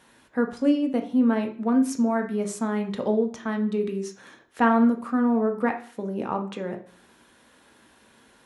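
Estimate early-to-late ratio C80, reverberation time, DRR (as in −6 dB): 16.0 dB, 0.45 s, 3.5 dB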